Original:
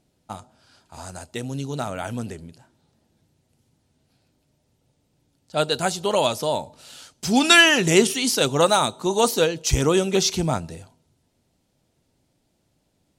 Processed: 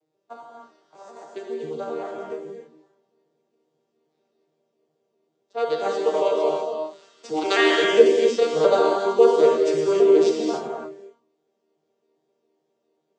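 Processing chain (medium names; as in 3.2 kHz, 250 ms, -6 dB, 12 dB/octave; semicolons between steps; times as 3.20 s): vocoder on a broken chord major triad, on D#3, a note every 135 ms; resonant low shelf 290 Hz -12.5 dB, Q 3; gated-style reverb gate 330 ms flat, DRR -2 dB; trim -4 dB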